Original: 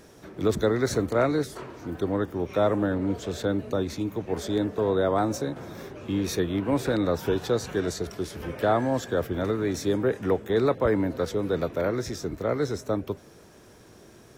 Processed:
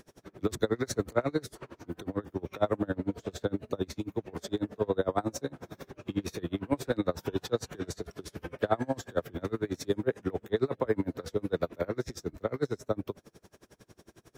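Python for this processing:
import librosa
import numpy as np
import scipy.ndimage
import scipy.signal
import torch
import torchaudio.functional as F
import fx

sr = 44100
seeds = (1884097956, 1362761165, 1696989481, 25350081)

y = x * 10.0 ** (-30 * (0.5 - 0.5 * np.cos(2.0 * np.pi * 11.0 * np.arange(len(x)) / sr)) / 20.0)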